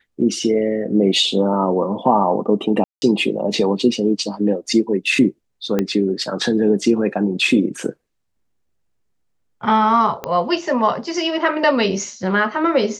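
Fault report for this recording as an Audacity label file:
2.840000	3.020000	dropout 180 ms
5.790000	5.790000	pop -7 dBFS
10.240000	10.240000	pop -11 dBFS

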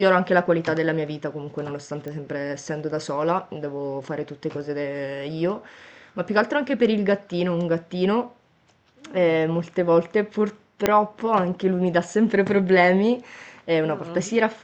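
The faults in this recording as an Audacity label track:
2.080000	2.080000	pop -22 dBFS
10.860000	10.860000	pop -4 dBFS

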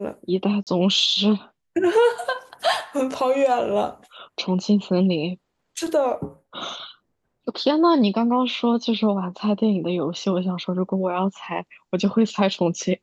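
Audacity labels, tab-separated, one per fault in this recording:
0.630000	0.670000	dropout 38 ms

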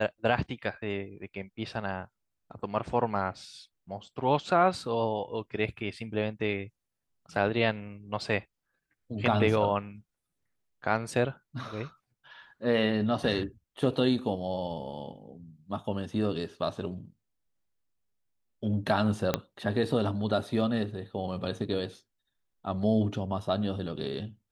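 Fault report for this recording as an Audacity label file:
19.340000	19.340000	pop -10 dBFS

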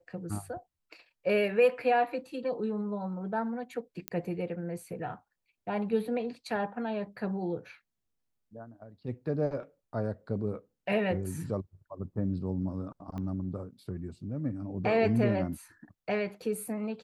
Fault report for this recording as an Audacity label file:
4.080000	4.080000	pop -15 dBFS
13.180000	13.180000	pop -28 dBFS

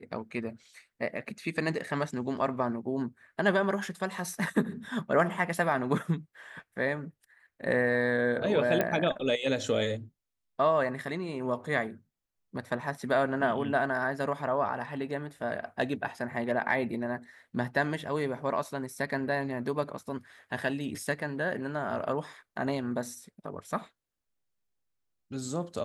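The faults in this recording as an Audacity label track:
8.810000	8.810000	pop -13 dBFS

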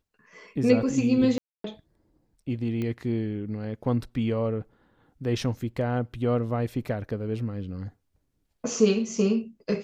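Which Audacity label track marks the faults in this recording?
1.380000	1.640000	dropout 263 ms
2.820000	2.820000	pop -20 dBFS

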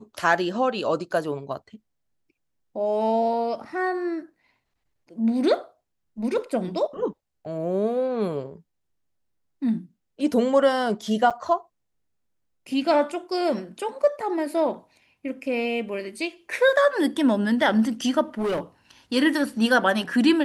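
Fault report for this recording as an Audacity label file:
11.300000	11.310000	dropout 6.9 ms
18.380000	18.600000	clipped -22 dBFS

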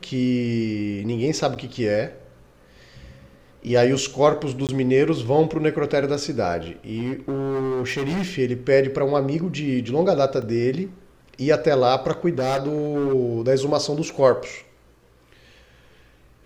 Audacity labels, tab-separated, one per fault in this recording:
1.550000	1.560000	dropout 8.4 ms
4.670000	4.690000	dropout 18 ms
6.920000	8.260000	clipped -21.5 dBFS
10.420000	10.420000	dropout 2.2 ms
12.380000	13.140000	clipped -18.5 dBFS

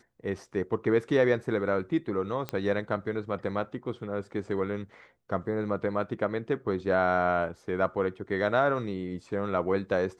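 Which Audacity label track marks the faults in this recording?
2.490000	2.490000	pop -17 dBFS

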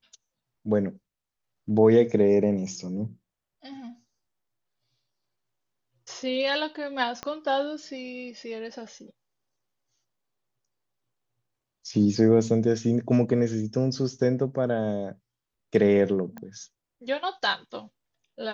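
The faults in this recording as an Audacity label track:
7.230000	7.230000	pop -17 dBFS
16.380000	16.380000	pop -26 dBFS

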